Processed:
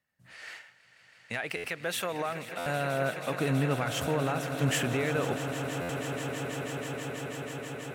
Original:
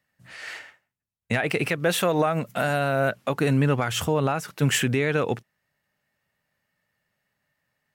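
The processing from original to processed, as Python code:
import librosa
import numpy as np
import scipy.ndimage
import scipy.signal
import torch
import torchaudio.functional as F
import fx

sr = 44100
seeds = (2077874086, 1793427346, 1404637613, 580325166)

y = fx.low_shelf(x, sr, hz=490.0, db=-10.0, at=(0.55, 2.62))
y = fx.echo_swell(y, sr, ms=162, loudest=8, wet_db=-14.0)
y = fx.buffer_glitch(y, sr, at_s=(1.56, 2.58, 5.81), block=512, repeats=6)
y = F.gain(torch.from_numpy(y), -7.0).numpy()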